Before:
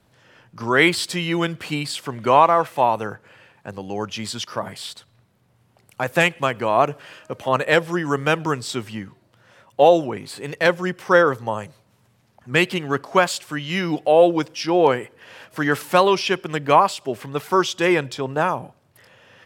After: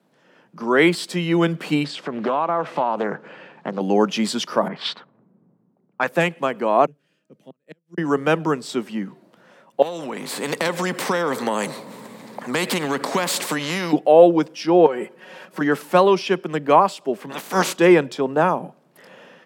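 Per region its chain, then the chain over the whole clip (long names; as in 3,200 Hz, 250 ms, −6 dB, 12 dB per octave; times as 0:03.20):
0:01.84–0:03.81: low-pass filter 5,000 Hz + downward compressor 4 to 1, threshold −28 dBFS + highs frequency-modulated by the lows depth 0.42 ms
0:04.68–0:06.09: low-pass that shuts in the quiet parts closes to 300 Hz, open at −26 dBFS + flat-topped bell 2,300 Hz +9 dB 2.9 octaves
0:06.86–0:07.98: guitar amp tone stack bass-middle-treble 10-0-1 + gate with flip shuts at −33 dBFS, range −38 dB
0:09.82–0:13.93: EQ curve with evenly spaced ripples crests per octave 0.99, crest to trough 6 dB + downward compressor 3 to 1, threshold −27 dBFS + every bin compressed towards the loudest bin 2 to 1
0:14.86–0:15.61: comb filter 5.4 ms, depth 77% + downward compressor, threshold −23 dBFS
0:17.29–0:17.76: ceiling on every frequency bin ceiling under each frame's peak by 28 dB + notch filter 5,300 Hz, Q 18 + transient designer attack −9 dB, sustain +3 dB
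whole clip: automatic gain control; Butterworth high-pass 160 Hz 48 dB per octave; tilt shelving filter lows +4.5 dB, about 1,100 Hz; level −3 dB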